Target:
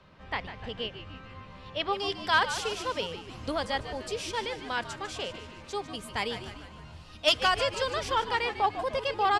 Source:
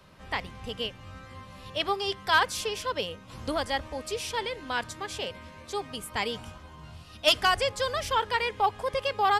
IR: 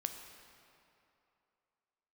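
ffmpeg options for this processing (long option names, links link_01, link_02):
-filter_complex "[0:a]asetnsamples=nb_out_samples=441:pad=0,asendcmd='1.93 lowpass f 8400',lowpass=4100,asplit=7[link_01][link_02][link_03][link_04][link_05][link_06][link_07];[link_02]adelay=149,afreqshift=-89,volume=-11dB[link_08];[link_03]adelay=298,afreqshift=-178,volume=-16.4dB[link_09];[link_04]adelay=447,afreqshift=-267,volume=-21.7dB[link_10];[link_05]adelay=596,afreqshift=-356,volume=-27.1dB[link_11];[link_06]adelay=745,afreqshift=-445,volume=-32.4dB[link_12];[link_07]adelay=894,afreqshift=-534,volume=-37.8dB[link_13];[link_01][link_08][link_09][link_10][link_11][link_12][link_13]amix=inputs=7:normalize=0,volume=-1.5dB"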